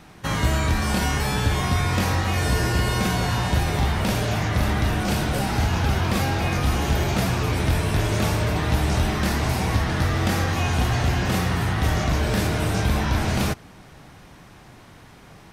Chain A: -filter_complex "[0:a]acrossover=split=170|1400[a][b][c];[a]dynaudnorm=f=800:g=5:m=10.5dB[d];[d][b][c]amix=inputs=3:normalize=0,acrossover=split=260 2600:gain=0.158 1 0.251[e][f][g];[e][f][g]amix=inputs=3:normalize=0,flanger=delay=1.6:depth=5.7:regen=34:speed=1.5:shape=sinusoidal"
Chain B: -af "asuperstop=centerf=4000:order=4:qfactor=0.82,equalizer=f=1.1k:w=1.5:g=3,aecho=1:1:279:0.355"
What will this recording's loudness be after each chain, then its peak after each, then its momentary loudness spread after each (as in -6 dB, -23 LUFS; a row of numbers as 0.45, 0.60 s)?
-30.5, -22.5 LUFS; -17.0, -8.5 dBFS; 1, 1 LU